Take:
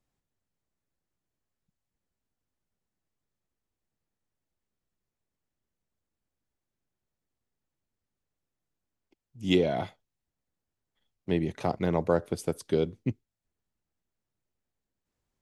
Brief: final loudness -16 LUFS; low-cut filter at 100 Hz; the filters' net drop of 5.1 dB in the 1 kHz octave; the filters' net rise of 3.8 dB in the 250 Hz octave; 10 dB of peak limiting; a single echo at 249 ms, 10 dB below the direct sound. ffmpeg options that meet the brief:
-af "highpass=100,equalizer=f=250:t=o:g=6,equalizer=f=1000:t=o:g=-8.5,alimiter=limit=0.112:level=0:latency=1,aecho=1:1:249:0.316,volume=6.31"

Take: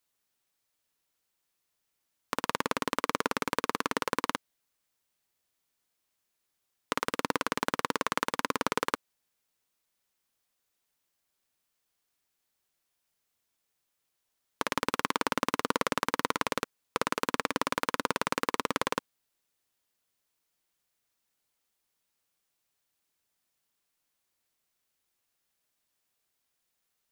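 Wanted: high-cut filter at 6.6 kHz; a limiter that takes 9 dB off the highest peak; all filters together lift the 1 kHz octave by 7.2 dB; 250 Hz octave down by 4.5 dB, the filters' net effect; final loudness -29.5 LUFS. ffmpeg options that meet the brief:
-af "lowpass=6600,equalizer=f=250:t=o:g=-6,equalizer=f=1000:t=o:g=8.5,volume=1.78,alimiter=limit=0.355:level=0:latency=1"

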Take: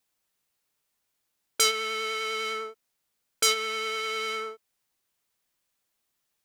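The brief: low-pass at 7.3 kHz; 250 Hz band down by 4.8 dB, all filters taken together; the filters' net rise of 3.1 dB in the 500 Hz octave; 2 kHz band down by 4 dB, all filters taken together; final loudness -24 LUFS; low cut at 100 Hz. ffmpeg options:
-af "highpass=100,lowpass=7300,equalizer=f=250:t=o:g=-7.5,equalizer=f=500:t=o:g=6,equalizer=f=2000:t=o:g=-4.5,volume=1.78"

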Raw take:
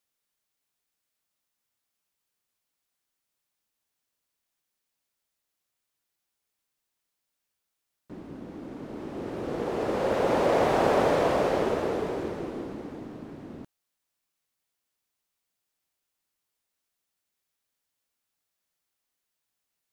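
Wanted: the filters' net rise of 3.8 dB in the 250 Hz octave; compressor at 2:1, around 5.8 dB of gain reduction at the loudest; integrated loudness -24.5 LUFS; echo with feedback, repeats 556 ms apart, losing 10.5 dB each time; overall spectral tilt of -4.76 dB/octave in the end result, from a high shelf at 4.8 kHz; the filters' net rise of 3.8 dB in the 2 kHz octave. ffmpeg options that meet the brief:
-af "equalizer=f=250:t=o:g=5,equalizer=f=2000:t=o:g=4,highshelf=f=4800:g=5,acompressor=threshold=0.0398:ratio=2,aecho=1:1:556|1112|1668:0.299|0.0896|0.0269,volume=2"

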